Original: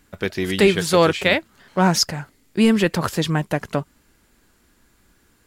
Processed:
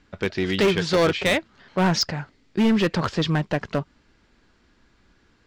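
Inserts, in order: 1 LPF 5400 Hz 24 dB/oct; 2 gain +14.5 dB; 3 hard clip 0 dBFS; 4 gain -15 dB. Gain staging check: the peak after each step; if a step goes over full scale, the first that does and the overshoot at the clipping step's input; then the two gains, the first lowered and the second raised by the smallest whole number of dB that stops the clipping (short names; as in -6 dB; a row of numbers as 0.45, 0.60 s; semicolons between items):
-5.0, +9.5, 0.0, -15.0 dBFS; step 2, 9.5 dB; step 2 +4.5 dB, step 4 -5 dB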